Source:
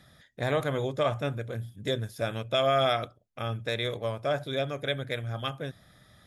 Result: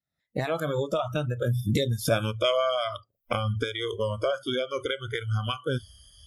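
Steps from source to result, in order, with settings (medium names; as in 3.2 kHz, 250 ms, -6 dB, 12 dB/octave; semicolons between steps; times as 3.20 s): Doppler pass-by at 2.12 s, 19 m/s, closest 4.7 m; recorder AGC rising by 70 dB/s; spectral noise reduction 26 dB; trim +6.5 dB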